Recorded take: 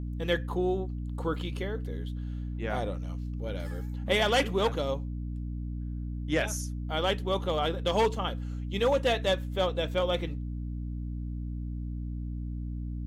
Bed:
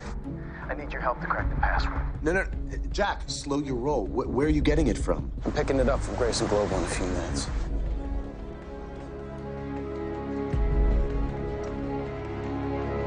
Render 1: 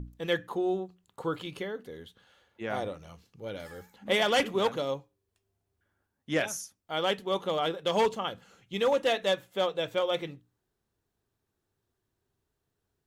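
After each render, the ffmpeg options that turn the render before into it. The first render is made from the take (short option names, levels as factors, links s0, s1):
-af "bandreject=f=60:t=h:w=6,bandreject=f=120:t=h:w=6,bandreject=f=180:t=h:w=6,bandreject=f=240:t=h:w=6,bandreject=f=300:t=h:w=6"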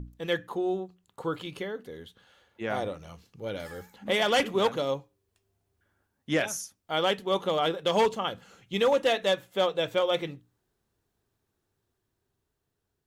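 -af "dynaudnorm=f=950:g=5:m=1.58,alimiter=limit=0.168:level=0:latency=1:release=497"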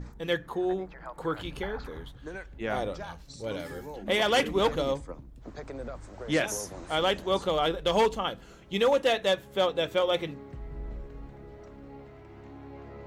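-filter_complex "[1:a]volume=0.178[s0];[0:a][s0]amix=inputs=2:normalize=0"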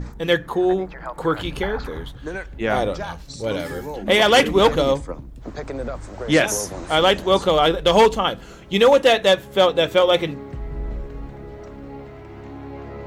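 -af "volume=3.16"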